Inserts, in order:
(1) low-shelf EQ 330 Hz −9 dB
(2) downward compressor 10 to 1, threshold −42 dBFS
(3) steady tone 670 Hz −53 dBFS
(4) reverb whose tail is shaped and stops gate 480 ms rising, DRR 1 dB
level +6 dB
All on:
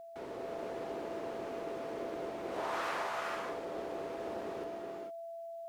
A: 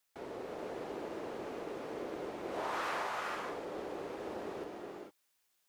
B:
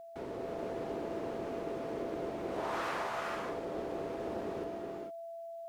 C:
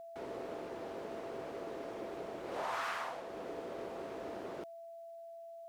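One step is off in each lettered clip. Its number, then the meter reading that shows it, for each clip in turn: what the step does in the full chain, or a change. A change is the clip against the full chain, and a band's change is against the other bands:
3, 500 Hz band −2.5 dB
1, 125 Hz band +7.0 dB
4, change in momentary loudness spread +4 LU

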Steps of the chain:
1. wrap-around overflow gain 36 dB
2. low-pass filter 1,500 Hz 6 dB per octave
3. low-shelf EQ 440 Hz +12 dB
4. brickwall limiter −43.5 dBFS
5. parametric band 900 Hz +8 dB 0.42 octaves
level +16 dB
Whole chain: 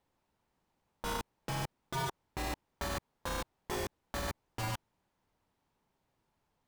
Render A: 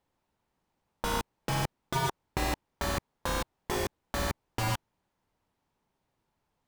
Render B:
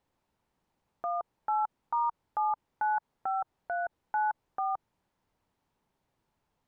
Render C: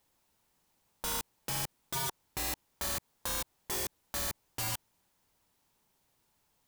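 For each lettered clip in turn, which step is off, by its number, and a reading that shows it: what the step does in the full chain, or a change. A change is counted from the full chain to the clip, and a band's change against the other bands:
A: 4, average gain reduction 6.0 dB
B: 1, change in crest factor −3.5 dB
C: 2, 8 kHz band +12.5 dB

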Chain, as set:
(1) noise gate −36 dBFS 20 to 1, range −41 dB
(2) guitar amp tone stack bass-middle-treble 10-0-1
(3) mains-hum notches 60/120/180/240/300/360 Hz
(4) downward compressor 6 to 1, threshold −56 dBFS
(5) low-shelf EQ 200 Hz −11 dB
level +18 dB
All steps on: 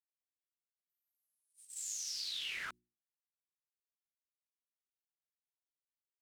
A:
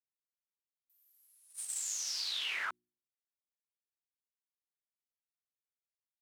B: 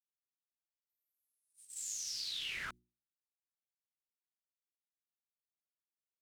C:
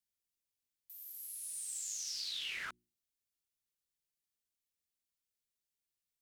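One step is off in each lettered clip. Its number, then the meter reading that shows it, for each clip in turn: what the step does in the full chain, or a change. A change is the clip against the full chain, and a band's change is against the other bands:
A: 2, 1 kHz band +3.0 dB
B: 5, 250 Hz band +4.5 dB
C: 1, change in momentary loudness spread +2 LU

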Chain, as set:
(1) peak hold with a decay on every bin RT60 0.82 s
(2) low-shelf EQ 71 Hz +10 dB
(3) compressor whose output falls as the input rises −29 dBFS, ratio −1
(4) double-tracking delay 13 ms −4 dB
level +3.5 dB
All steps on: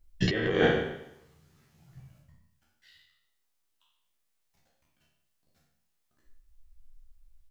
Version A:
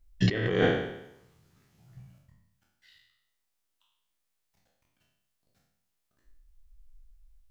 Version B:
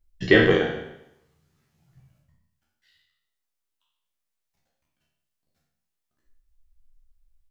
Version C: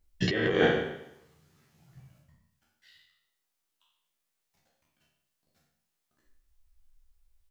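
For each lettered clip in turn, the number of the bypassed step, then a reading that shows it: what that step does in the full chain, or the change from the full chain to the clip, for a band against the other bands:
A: 4, 125 Hz band +5.0 dB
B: 3, change in crest factor +2.0 dB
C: 2, 125 Hz band −2.0 dB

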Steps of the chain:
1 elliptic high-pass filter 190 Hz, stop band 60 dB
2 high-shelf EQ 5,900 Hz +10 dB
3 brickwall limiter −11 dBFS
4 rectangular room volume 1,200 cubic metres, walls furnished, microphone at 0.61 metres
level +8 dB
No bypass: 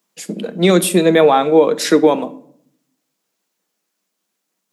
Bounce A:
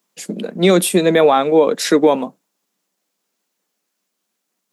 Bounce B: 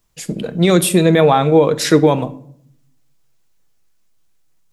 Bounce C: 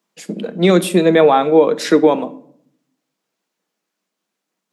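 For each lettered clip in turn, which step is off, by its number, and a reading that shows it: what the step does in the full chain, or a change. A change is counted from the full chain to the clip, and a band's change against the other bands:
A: 4, echo-to-direct ratio −12.0 dB to none audible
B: 1, 125 Hz band +6.5 dB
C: 2, 8 kHz band −7.0 dB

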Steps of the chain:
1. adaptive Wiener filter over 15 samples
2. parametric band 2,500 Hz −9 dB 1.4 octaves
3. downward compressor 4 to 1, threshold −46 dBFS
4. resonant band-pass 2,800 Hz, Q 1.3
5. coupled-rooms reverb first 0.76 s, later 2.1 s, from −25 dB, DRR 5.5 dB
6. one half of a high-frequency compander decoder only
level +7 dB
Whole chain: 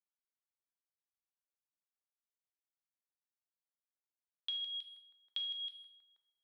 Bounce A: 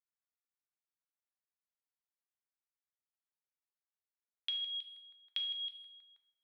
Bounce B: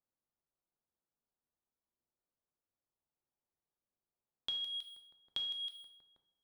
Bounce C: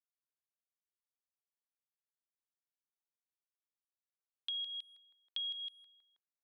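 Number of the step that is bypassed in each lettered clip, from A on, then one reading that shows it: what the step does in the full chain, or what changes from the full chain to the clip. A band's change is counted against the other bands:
2, change in crest factor +2.5 dB
4, change in crest factor +2.5 dB
5, change in momentary loudness spread −10 LU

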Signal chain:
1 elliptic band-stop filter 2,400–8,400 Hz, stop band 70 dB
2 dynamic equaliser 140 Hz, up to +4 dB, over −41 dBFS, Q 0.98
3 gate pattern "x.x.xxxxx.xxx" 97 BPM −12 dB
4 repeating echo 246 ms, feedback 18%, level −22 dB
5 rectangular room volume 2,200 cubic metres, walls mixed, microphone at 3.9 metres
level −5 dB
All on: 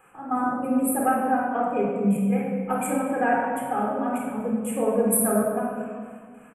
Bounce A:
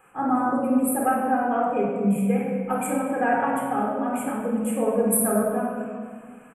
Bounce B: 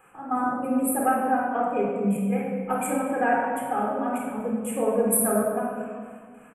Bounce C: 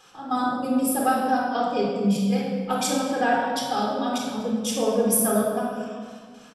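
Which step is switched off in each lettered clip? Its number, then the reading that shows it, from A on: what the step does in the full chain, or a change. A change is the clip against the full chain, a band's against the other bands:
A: 3, change in momentary loudness spread −1 LU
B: 2, 125 Hz band −2.5 dB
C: 1, 8 kHz band +1.5 dB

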